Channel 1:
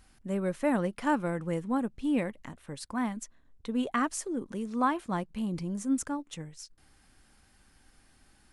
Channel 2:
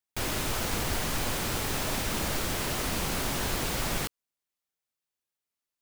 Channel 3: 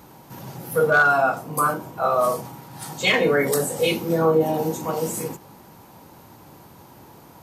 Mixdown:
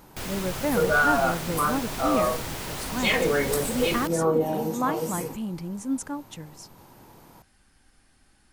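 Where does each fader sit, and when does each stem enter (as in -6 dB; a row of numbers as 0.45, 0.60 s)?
+0.5, -3.5, -4.5 dB; 0.00, 0.00, 0.00 s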